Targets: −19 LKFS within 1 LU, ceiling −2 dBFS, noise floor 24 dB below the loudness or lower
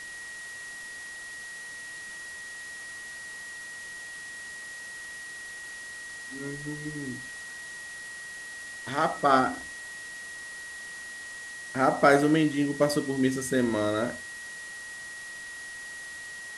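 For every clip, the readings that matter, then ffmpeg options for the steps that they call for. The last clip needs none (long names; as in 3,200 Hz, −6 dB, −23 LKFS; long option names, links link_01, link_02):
interfering tone 1,900 Hz; level of the tone −39 dBFS; background noise floor −41 dBFS; target noise floor −55 dBFS; integrated loudness −31.0 LKFS; sample peak −7.0 dBFS; target loudness −19.0 LKFS
→ -af "bandreject=frequency=1900:width=30"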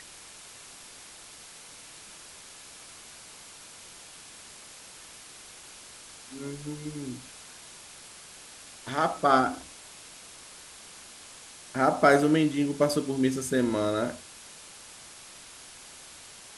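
interfering tone none found; background noise floor −48 dBFS; target noise floor −51 dBFS
→ -af "afftdn=noise_reduction=6:noise_floor=-48"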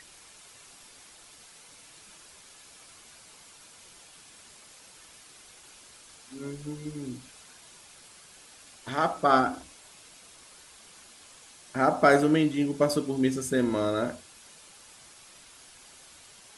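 background noise floor −53 dBFS; integrated loudness −26.5 LKFS; sample peak −7.0 dBFS; target loudness −19.0 LKFS
→ -af "volume=7.5dB,alimiter=limit=-2dB:level=0:latency=1"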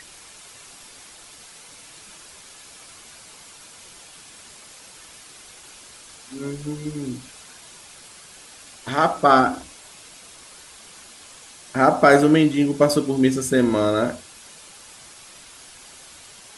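integrated loudness −19.5 LKFS; sample peak −2.0 dBFS; background noise floor −45 dBFS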